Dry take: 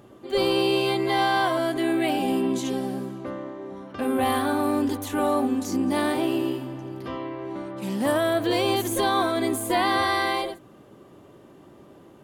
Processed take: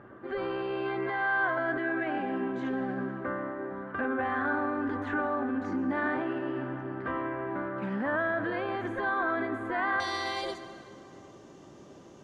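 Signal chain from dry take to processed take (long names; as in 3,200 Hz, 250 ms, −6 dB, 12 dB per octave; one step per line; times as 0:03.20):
brickwall limiter −23.5 dBFS, peak gain reduction 11 dB
low-pass with resonance 1,600 Hz, resonance Q 4.5, from 0:10.00 6,200 Hz
dense smooth reverb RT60 2.9 s, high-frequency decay 0.6×, pre-delay 90 ms, DRR 11.5 dB
level −2 dB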